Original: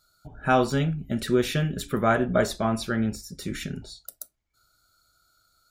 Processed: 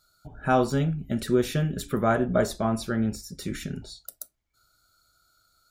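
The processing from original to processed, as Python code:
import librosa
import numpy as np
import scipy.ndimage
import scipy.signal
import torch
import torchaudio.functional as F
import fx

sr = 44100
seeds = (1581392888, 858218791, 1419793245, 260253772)

y = fx.dynamic_eq(x, sr, hz=2600.0, q=0.72, threshold_db=-41.0, ratio=4.0, max_db=-6)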